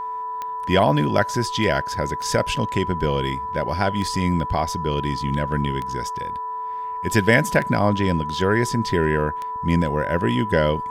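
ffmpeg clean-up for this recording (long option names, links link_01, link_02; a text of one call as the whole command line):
ffmpeg -i in.wav -af "adeclick=threshold=4,bandreject=frequency=439.5:width_type=h:width=4,bandreject=frequency=879:width_type=h:width=4,bandreject=frequency=1318.5:width_type=h:width=4,bandreject=frequency=1758:width_type=h:width=4,bandreject=frequency=990:width=30" out.wav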